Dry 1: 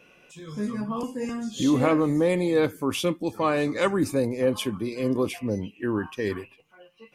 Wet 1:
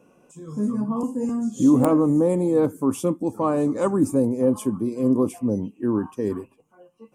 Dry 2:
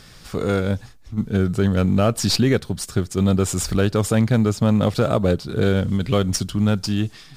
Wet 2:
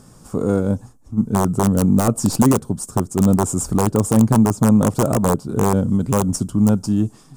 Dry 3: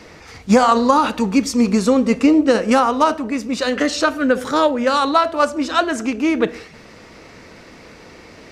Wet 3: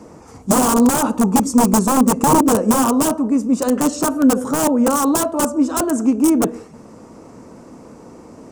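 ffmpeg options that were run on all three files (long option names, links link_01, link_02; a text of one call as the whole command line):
ffmpeg -i in.wav -af "aeval=exprs='(mod(2.99*val(0)+1,2)-1)/2.99':channel_layout=same,equalizer=frequency=125:width_type=o:width=1:gain=5,equalizer=frequency=250:width_type=o:width=1:gain=10,equalizer=frequency=500:width_type=o:width=1:gain=3,equalizer=frequency=1000:width_type=o:width=1:gain=8,equalizer=frequency=2000:width_type=o:width=1:gain=-11,equalizer=frequency=4000:width_type=o:width=1:gain=-12,equalizer=frequency=8000:width_type=o:width=1:gain=10,volume=-4.5dB" out.wav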